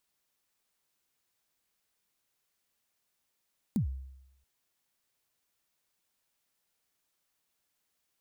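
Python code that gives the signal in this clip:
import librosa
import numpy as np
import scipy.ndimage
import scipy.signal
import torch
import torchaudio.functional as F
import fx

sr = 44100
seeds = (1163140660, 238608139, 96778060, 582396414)

y = fx.drum_kick(sr, seeds[0], length_s=0.68, level_db=-23.0, start_hz=250.0, end_hz=66.0, sweep_ms=106.0, decay_s=0.87, click=True)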